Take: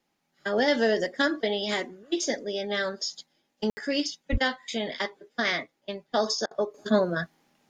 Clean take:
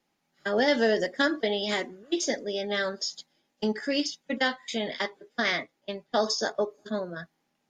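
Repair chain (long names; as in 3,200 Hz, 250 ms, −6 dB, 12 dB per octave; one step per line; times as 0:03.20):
high-pass at the plosives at 0:04.31
ambience match 0:03.70–0:03.77
repair the gap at 0:06.46, 49 ms
level correction −9 dB, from 0:06.74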